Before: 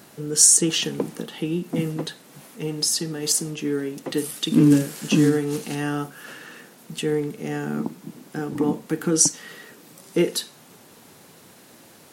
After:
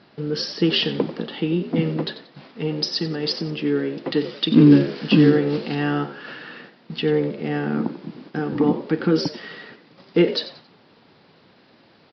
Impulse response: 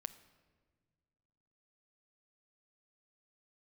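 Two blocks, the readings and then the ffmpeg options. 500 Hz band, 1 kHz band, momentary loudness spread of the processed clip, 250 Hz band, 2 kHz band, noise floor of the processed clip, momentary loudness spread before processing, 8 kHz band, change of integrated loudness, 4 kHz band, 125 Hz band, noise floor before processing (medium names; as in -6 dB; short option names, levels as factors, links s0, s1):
+4.0 dB, +3.5 dB, 19 LU, +3.5 dB, +3.5 dB, -55 dBFS, 18 LU, under -25 dB, +0.5 dB, +2.0 dB, +3.5 dB, -50 dBFS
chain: -filter_complex "[0:a]agate=range=0.447:threshold=0.00501:ratio=16:detection=peak,asplit=4[s0][s1][s2][s3];[s1]adelay=91,afreqshift=64,volume=0.2[s4];[s2]adelay=182,afreqshift=128,volume=0.0638[s5];[s3]adelay=273,afreqshift=192,volume=0.0204[s6];[s0][s4][s5][s6]amix=inputs=4:normalize=0,aresample=11025,aresample=44100,volume=1.5"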